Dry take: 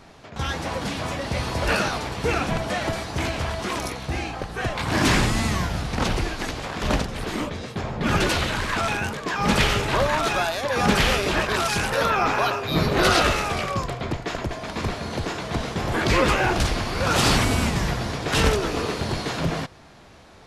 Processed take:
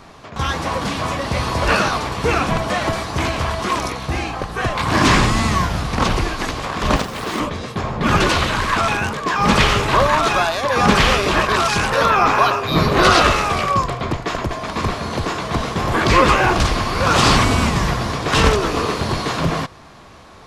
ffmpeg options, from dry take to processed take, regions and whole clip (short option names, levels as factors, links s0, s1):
-filter_complex "[0:a]asettb=1/sr,asplit=3[s0][s1][s2];[s0]atrim=end=6.964[s3];[s1]atrim=start=6.96:end=7.4,asetpts=PTS-STARTPTS,afade=t=in:d=0.004:c=qsin,afade=t=out:st=0.436:d=0.004:c=qsin,highpass=f=180:p=1,acrusher=bits=2:mode=log:mix=0:aa=0.000001[s4];[s2]atrim=start=7.396[s5];[s3][s4]acrossfade=d=0.004:c1=hsin:c2=qsin[s6];[s6][s5]acrossfade=d=0.004:c1=qsin:c2=hsin,acrossover=split=8600[s7][s8];[s8]acompressor=threshold=0.00447:ratio=4:attack=1:release=60[s9];[s7][s9]amix=inputs=2:normalize=0,equalizer=f=1100:t=o:w=0.27:g=8,volume=1.78"